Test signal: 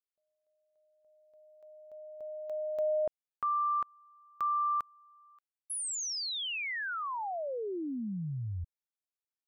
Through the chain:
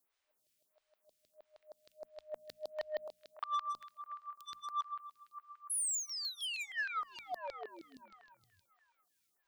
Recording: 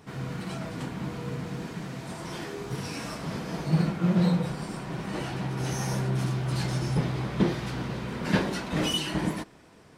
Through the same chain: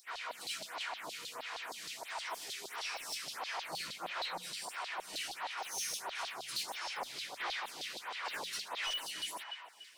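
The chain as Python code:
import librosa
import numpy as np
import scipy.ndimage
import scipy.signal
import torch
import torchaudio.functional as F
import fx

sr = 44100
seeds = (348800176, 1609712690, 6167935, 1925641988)

p1 = scipy.signal.sosfilt(scipy.signal.butter(4, 42.0, 'highpass', fs=sr, output='sos'), x)
p2 = fx.peak_eq(p1, sr, hz=1400.0, db=-7.0, octaves=1.3)
p3 = fx.filter_lfo_highpass(p2, sr, shape='saw_down', hz=6.4, low_hz=710.0, high_hz=4400.0, q=3.6)
p4 = fx.high_shelf(p3, sr, hz=3100.0, db=5.0)
p5 = fx.rider(p4, sr, range_db=5, speed_s=0.5)
p6 = p4 + (p5 * librosa.db_to_amplitude(2.5))
p7 = fx.quant_dither(p6, sr, seeds[0], bits=12, dither='triangular')
p8 = fx.echo_banded(p7, sr, ms=289, feedback_pct=57, hz=1600.0, wet_db=-12.0)
p9 = 10.0 ** (-23.0 / 20.0) * np.tanh(p8 / 10.0 ** (-23.0 / 20.0))
p10 = fx.hum_notches(p9, sr, base_hz=60, count=4)
p11 = fx.stagger_phaser(p10, sr, hz=1.5)
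y = p11 * librosa.db_to_amplitude(-7.5)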